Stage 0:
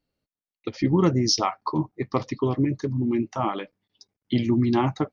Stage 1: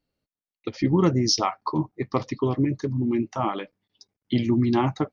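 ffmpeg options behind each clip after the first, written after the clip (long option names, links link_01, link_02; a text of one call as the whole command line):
ffmpeg -i in.wav -af anull out.wav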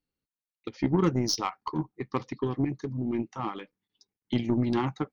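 ffmpeg -i in.wav -af "equalizer=frequency=100:width_type=o:width=0.33:gain=-5,equalizer=frequency=630:width_type=o:width=0.33:gain=-12,equalizer=frequency=5000:width_type=o:width=0.33:gain=-3,aeval=exprs='0.447*(cos(1*acos(clip(val(0)/0.447,-1,1)))-cos(1*PI/2))+0.0141*(cos(4*acos(clip(val(0)/0.447,-1,1)))-cos(4*PI/2))+0.0251*(cos(7*acos(clip(val(0)/0.447,-1,1)))-cos(7*PI/2))':channel_layout=same,volume=-3dB" out.wav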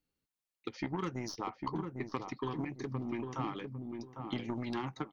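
ffmpeg -i in.wav -filter_complex "[0:a]acrossover=split=770|1700[link_01][link_02][link_03];[link_01]acompressor=threshold=-39dB:ratio=4[link_04];[link_02]acompressor=threshold=-44dB:ratio=4[link_05];[link_03]acompressor=threshold=-49dB:ratio=4[link_06];[link_04][link_05][link_06]amix=inputs=3:normalize=0,asplit=2[link_07][link_08];[link_08]adelay=802,lowpass=frequency=820:poles=1,volume=-3.5dB,asplit=2[link_09][link_10];[link_10]adelay=802,lowpass=frequency=820:poles=1,volume=0.29,asplit=2[link_11][link_12];[link_12]adelay=802,lowpass=frequency=820:poles=1,volume=0.29,asplit=2[link_13][link_14];[link_14]adelay=802,lowpass=frequency=820:poles=1,volume=0.29[link_15];[link_07][link_09][link_11][link_13][link_15]amix=inputs=5:normalize=0,volume=1dB" out.wav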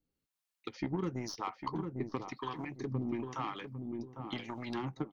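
ffmpeg -i in.wav -filter_complex "[0:a]acrossover=split=660[link_01][link_02];[link_01]aeval=exprs='val(0)*(1-0.7/2+0.7/2*cos(2*PI*1*n/s))':channel_layout=same[link_03];[link_02]aeval=exprs='val(0)*(1-0.7/2-0.7/2*cos(2*PI*1*n/s))':channel_layout=same[link_04];[link_03][link_04]amix=inputs=2:normalize=0,volume=3dB" out.wav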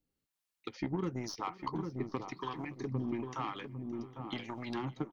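ffmpeg -i in.wav -af "aecho=1:1:569|1138|1707:0.0841|0.0337|0.0135" out.wav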